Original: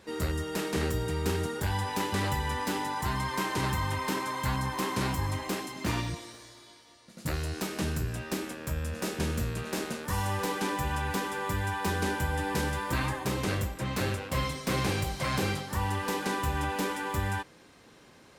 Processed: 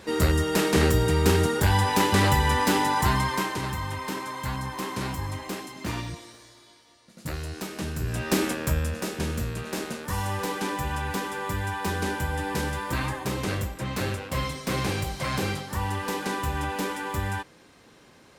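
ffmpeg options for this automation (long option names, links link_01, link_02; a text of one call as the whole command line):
ffmpeg -i in.wav -af "volume=21dB,afade=type=out:start_time=3.02:duration=0.58:silence=0.316228,afade=type=in:start_time=7.95:duration=0.5:silence=0.251189,afade=type=out:start_time=8.45:duration=0.61:silence=0.334965" out.wav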